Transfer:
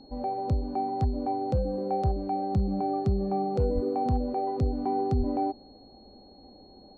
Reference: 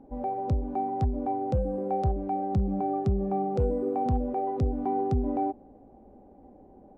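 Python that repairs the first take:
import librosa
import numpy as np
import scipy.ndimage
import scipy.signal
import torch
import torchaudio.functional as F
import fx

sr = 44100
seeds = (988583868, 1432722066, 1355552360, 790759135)

y = fx.notch(x, sr, hz=4300.0, q=30.0)
y = fx.highpass(y, sr, hz=140.0, slope=24, at=(3.74, 3.86), fade=0.02)
y = fx.highpass(y, sr, hz=140.0, slope=24, at=(5.18, 5.3), fade=0.02)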